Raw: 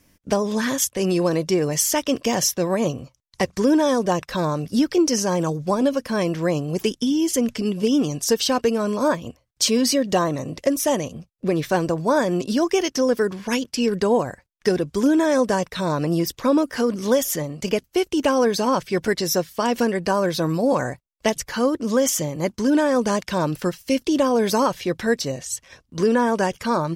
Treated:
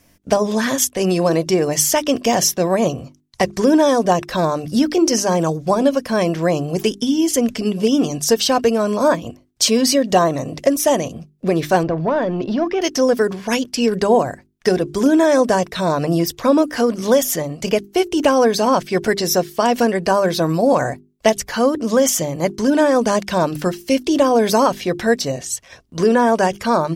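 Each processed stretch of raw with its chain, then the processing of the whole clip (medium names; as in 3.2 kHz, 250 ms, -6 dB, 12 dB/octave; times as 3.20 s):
11.83–12.82 s: compression 2:1, threshold -24 dBFS + waveshaping leveller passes 1 + distance through air 280 m
whole clip: peaking EQ 690 Hz +6.5 dB 0.27 oct; hum notches 50/100/150/200/250/300/350/400 Hz; trim +4 dB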